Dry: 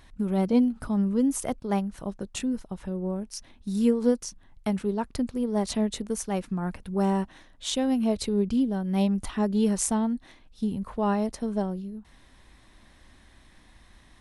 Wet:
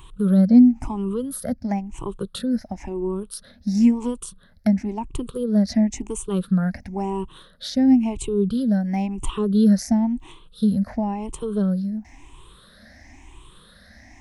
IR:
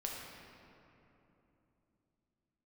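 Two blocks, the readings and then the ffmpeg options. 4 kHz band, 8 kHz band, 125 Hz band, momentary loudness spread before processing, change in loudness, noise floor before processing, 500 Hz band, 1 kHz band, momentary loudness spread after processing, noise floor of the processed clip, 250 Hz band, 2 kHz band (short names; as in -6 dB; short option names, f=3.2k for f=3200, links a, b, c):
+0.5 dB, -1.0 dB, +6.5 dB, 11 LU, +5.5 dB, -56 dBFS, +1.0 dB, +0.5 dB, 14 LU, -51 dBFS, +6.5 dB, +1.0 dB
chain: -filter_complex "[0:a]afftfilt=real='re*pow(10,20/40*sin(2*PI*(0.67*log(max(b,1)*sr/1024/100)/log(2)-(0.97)*(pts-256)/sr)))':imag='im*pow(10,20/40*sin(2*PI*(0.67*log(max(b,1)*sr/1024/100)/log(2)-(0.97)*(pts-256)/sr)))':win_size=1024:overlap=0.75,adynamicequalizer=threshold=0.0126:dfrequency=450:dqfactor=2:tfrequency=450:tqfactor=2:attack=5:release=100:ratio=0.375:range=3.5:mode=cutabove:tftype=bell,acrossover=split=360[a][b];[b]acompressor=threshold=-34dB:ratio=6[c];[a][c]amix=inputs=2:normalize=0,volume=3.5dB"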